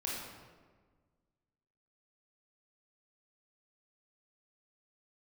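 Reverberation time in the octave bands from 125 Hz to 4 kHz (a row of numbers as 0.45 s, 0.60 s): 2.0 s, 1.9 s, 1.6 s, 1.4 s, 1.2 s, 0.90 s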